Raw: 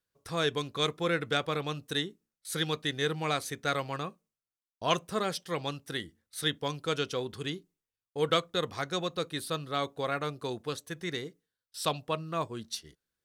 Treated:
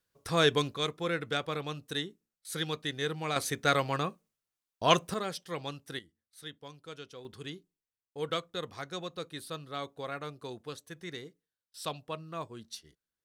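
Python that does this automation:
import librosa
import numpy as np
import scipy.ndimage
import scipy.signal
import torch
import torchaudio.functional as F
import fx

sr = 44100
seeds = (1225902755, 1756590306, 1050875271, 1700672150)

y = fx.gain(x, sr, db=fx.steps((0.0, 4.5), (0.74, -3.0), (3.36, 4.0), (5.14, -4.0), (5.99, -14.5), (7.25, -6.5)))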